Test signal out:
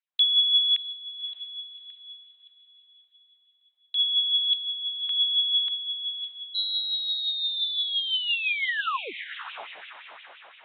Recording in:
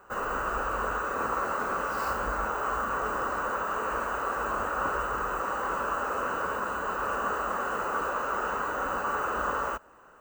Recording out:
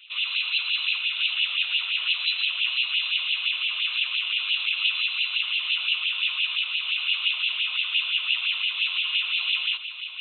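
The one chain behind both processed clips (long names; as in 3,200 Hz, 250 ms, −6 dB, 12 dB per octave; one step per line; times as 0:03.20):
voice inversion scrambler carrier 4,000 Hz
feedback delay with all-pass diffusion 584 ms, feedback 46%, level −11 dB
auto-filter high-pass sine 5.8 Hz 620–2,900 Hz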